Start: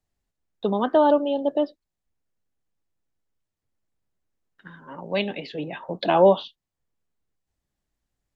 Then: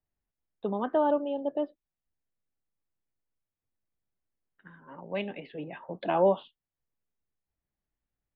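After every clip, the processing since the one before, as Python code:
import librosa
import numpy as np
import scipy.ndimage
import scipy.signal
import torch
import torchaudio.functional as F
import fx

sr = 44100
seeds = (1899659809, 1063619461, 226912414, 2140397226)

y = scipy.signal.sosfilt(scipy.signal.butter(4, 2800.0, 'lowpass', fs=sr, output='sos'), x)
y = y * 10.0 ** (-7.5 / 20.0)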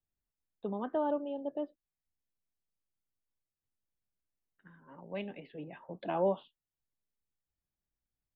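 y = fx.low_shelf(x, sr, hz=350.0, db=4.5)
y = y * 10.0 ** (-8.0 / 20.0)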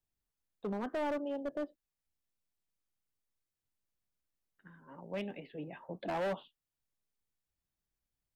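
y = np.clip(x, -10.0 ** (-32.5 / 20.0), 10.0 ** (-32.5 / 20.0))
y = y * 10.0 ** (1.0 / 20.0)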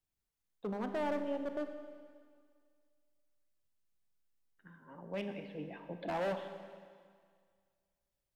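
y = fx.rev_schroeder(x, sr, rt60_s=2.0, comb_ms=31, drr_db=7.5)
y = y * 10.0 ** (-1.0 / 20.0)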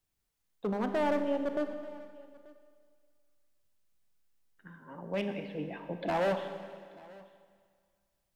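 y = x + 10.0 ** (-22.5 / 20.0) * np.pad(x, (int(885 * sr / 1000.0), 0))[:len(x)]
y = y * 10.0 ** (6.0 / 20.0)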